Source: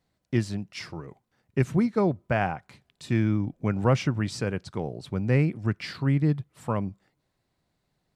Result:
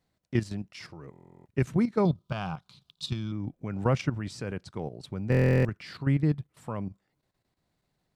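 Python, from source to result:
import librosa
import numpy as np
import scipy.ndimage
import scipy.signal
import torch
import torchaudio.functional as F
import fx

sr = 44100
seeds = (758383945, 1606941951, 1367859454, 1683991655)

y = fx.curve_eq(x, sr, hz=(110.0, 160.0, 260.0, 730.0, 1200.0, 1900.0, 3600.0, 7700.0), db=(0, 7, -5, -5, 5, -12, 15, 3), at=(2.05, 3.32))
y = fx.level_steps(y, sr, step_db=11)
y = fx.buffer_glitch(y, sr, at_s=(1.11, 5.3), block=1024, repeats=14)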